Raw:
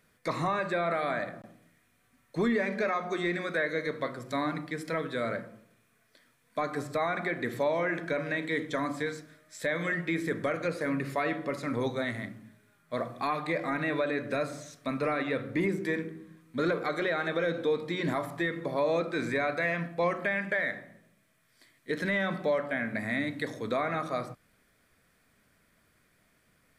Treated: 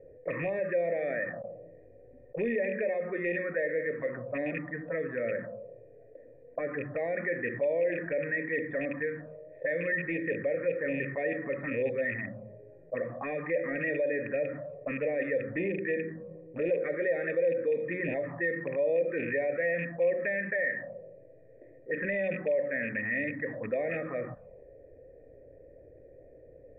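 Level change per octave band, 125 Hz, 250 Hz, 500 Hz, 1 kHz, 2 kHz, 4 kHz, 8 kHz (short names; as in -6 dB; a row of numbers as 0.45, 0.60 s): -4.0 dB, -4.0 dB, +2.0 dB, -12.0 dB, -0.5 dB, under -20 dB, under -25 dB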